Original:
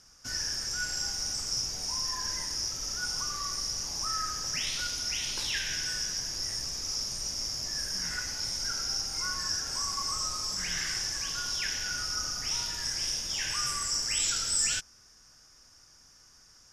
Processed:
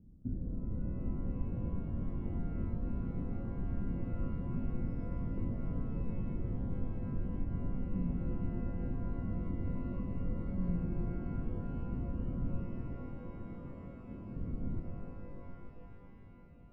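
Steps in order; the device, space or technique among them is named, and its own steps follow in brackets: 12.62–14.36 tilt +3 dB/oct; overdriven synthesiser ladder filter (soft clip -20.5 dBFS, distortion -14 dB; ladder low-pass 290 Hz, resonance 40%); shimmer reverb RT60 3.7 s, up +12 st, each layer -8 dB, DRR 2.5 dB; gain +17 dB

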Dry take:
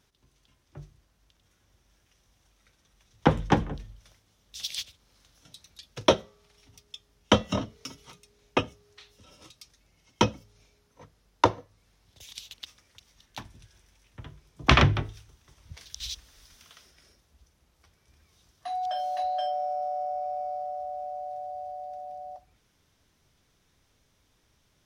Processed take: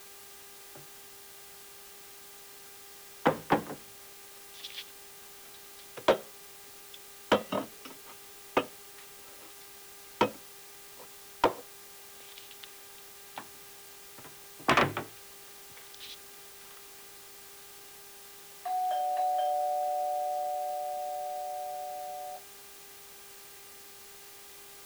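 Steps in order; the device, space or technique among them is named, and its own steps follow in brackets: aircraft radio (BPF 310–2400 Hz; hard clip -16 dBFS, distortion -11 dB; buzz 400 Hz, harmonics 27, -58 dBFS -4 dB/oct; white noise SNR 14 dB)

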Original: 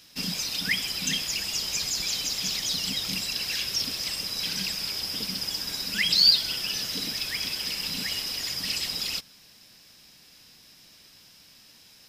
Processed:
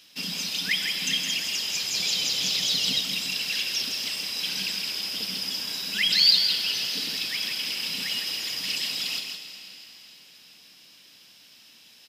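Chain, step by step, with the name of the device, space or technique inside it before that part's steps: PA in a hall (HPF 160 Hz 12 dB/oct; bell 3000 Hz +7 dB 0.76 oct; echo 0.164 s -6 dB; reverb RT60 3.8 s, pre-delay 62 ms, DRR 8.5 dB); 1.94–3.01 graphic EQ 125/500/4000 Hz +7/+5/+4 dB; gain -3 dB

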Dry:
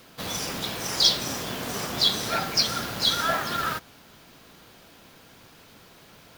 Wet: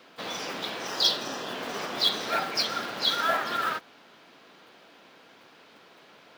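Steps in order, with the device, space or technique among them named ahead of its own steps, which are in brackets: early digital voice recorder (BPF 290–3900 Hz; block floating point 5-bit); 0.88–1.55 notch 2200 Hz, Q 6.1

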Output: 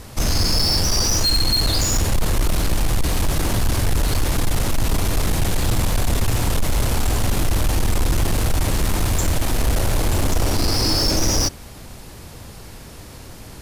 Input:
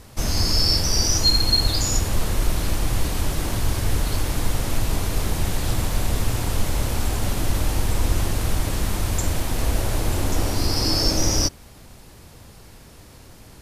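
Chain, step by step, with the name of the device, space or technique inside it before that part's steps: saturation between pre-emphasis and de-emphasis (high shelf 4800 Hz +7 dB; soft clip -19.5 dBFS, distortion -10 dB; high shelf 4800 Hz -7 dB); gain +7 dB

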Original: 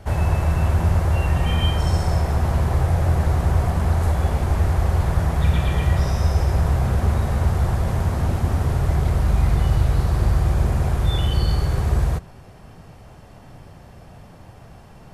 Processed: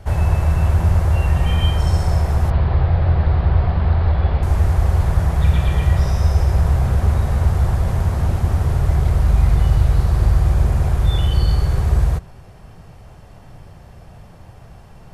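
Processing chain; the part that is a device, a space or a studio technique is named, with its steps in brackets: low shelf boost with a cut just above (low shelf 92 Hz +6 dB; bell 260 Hz -4 dB 0.52 oct); 2.5–4.43 steep low-pass 4500 Hz 48 dB/oct

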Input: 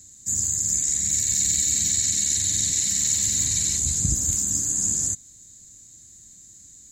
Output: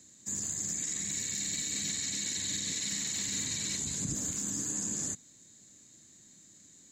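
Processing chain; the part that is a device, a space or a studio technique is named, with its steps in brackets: DJ mixer with the lows and highs turned down (three-band isolator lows -22 dB, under 150 Hz, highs -14 dB, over 4100 Hz; limiter -25.5 dBFS, peak gain reduction 8 dB); gain +1.5 dB

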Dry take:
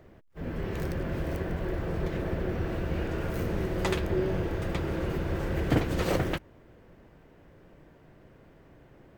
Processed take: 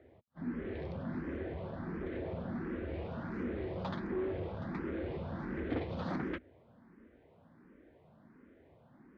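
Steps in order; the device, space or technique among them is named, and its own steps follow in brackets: barber-pole phaser into a guitar amplifier (endless phaser +1.4 Hz; soft clip -27 dBFS, distortion -14 dB; speaker cabinet 80–3700 Hz, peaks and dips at 130 Hz -5 dB, 240 Hz +9 dB, 2800 Hz -7 dB); gain -3.5 dB

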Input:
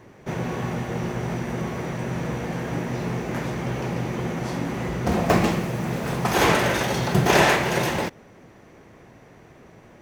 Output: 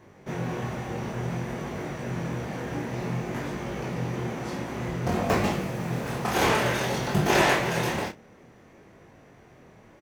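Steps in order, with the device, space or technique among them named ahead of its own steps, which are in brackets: double-tracked vocal (doubler 31 ms -12 dB; chorus 0.55 Hz, delay 20 ms, depth 7.2 ms); gain -1 dB

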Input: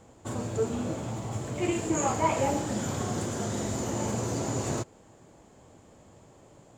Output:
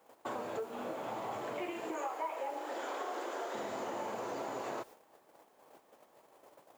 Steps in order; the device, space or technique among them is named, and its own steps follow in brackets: 1.91–3.55 steep high-pass 280 Hz 48 dB/oct; baby monitor (BPF 460–3100 Hz; compressor 10:1, threshold -41 dBFS, peak gain reduction 20 dB; white noise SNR 23 dB; gate -57 dBFS, range -12 dB); bell 910 Hz +3 dB 1.4 oct; gain +3.5 dB

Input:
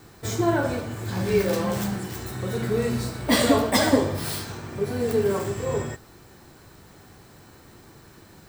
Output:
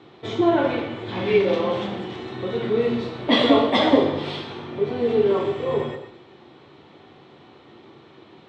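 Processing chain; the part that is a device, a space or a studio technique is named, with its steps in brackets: kitchen radio (speaker cabinet 180–3800 Hz, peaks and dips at 190 Hz -5 dB, 350 Hz +4 dB, 1600 Hz -9 dB, 3400 Hz +7 dB); bell 4800 Hz -5.5 dB 0.45 oct; non-linear reverb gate 0.33 s falling, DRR 5.5 dB; 0.57–1.38 dynamic EQ 2200 Hz, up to +6 dB, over -46 dBFS, Q 1.3; gain +2.5 dB

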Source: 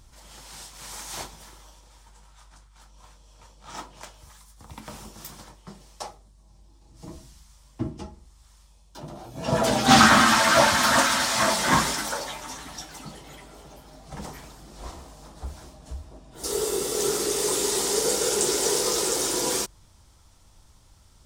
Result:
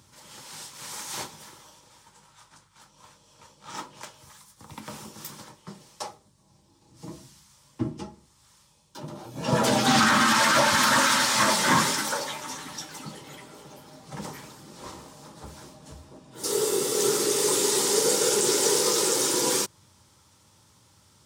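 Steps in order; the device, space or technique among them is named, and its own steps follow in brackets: PA system with an anti-feedback notch (HPF 100 Hz 24 dB/oct; Butterworth band-stop 700 Hz, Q 5.6; limiter -12 dBFS, peak gain reduction 10 dB); gain +1.5 dB

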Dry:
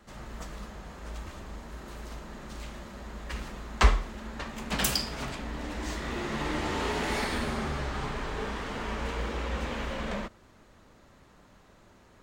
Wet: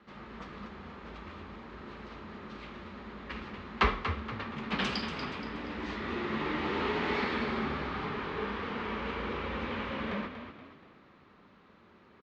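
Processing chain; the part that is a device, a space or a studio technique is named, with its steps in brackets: frequency-shifting delay pedal into a guitar cabinet (frequency-shifting echo 0.237 s, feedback 41%, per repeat +31 Hz, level -9 dB; speaker cabinet 91–4100 Hz, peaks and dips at 120 Hz -7 dB, 210 Hz +4 dB, 400 Hz +4 dB, 650 Hz -5 dB, 1200 Hz +4 dB, 2300 Hz +3 dB); gain -2.5 dB

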